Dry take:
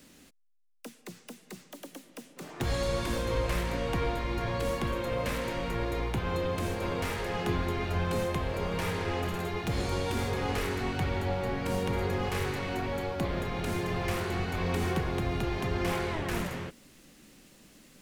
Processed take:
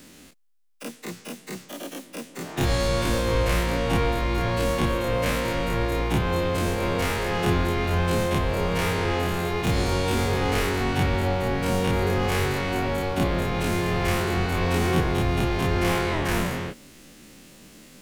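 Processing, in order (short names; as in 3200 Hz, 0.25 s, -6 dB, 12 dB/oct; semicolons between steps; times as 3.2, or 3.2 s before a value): spectral dilation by 60 ms; gain +4 dB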